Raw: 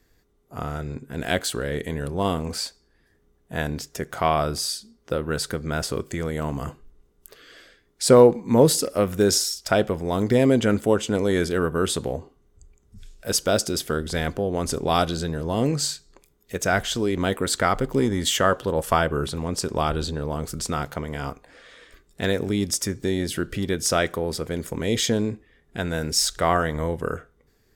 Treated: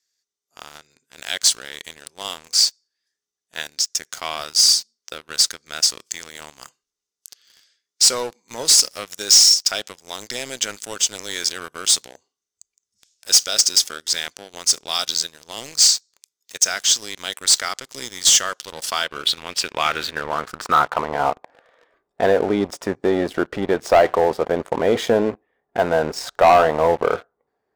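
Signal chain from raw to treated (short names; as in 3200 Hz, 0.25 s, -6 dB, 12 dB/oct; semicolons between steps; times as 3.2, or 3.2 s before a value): in parallel at -0.5 dB: limiter -13.5 dBFS, peak gain reduction 10 dB; on the sum: band-pass sweep 5800 Hz -> 770 Hz, 18.65–21.28; sample leveller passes 3; gain +2 dB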